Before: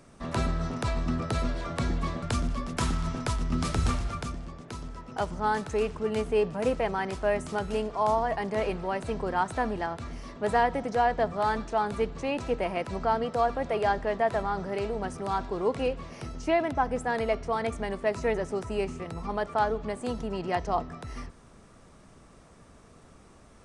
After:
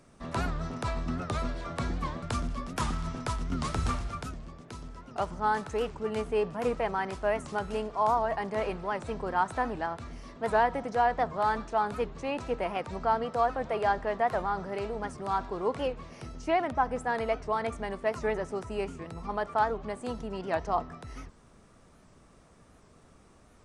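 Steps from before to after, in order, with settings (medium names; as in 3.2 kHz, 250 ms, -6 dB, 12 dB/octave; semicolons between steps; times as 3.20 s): dynamic bell 1.1 kHz, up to +5 dB, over -38 dBFS, Q 0.96; warped record 78 rpm, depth 160 cents; trim -4 dB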